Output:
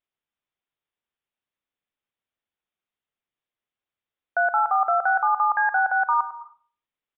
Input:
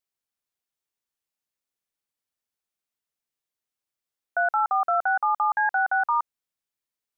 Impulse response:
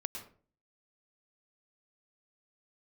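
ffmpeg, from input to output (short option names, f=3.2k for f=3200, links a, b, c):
-filter_complex "[0:a]asplit=2[a][b];[1:a]atrim=start_sample=2205,adelay=100[c];[b][c]afir=irnorm=-1:irlink=0,volume=-11dB[d];[a][d]amix=inputs=2:normalize=0,aresample=8000,aresample=44100,volume=2dB"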